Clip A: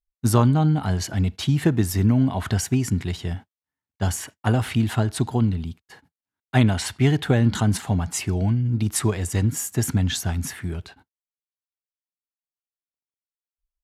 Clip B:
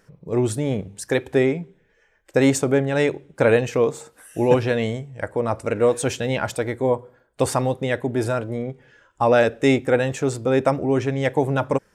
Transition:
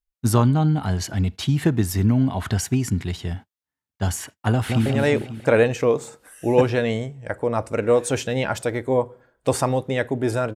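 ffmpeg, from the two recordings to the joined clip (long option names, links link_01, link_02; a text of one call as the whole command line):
ffmpeg -i cue0.wav -i cue1.wav -filter_complex "[0:a]apad=whole_dur=10.55,atrim=end=10.55,atrim=end=4.862[link_01];[1:a]atrim=start=2.788:end=8.48[link_02];[link_01][link_02]acrossfade=duration=0.004:curve1=hsin:curve2=hsin,asplit=2[link_03][link_04];[link_04]afade=type=in:start_time=4.51:duration=0.01,afade=type=out:start_time=4.86:duration=0.01,aecho=0:1:180|360|540|720|900|1080|1260:0.630957|0.347027|0.190865|0.104976|0.0577365|0.0317551|0.0174653[link_05];[link_03][link_05]amix=inputs=2:normalize=0" out.wav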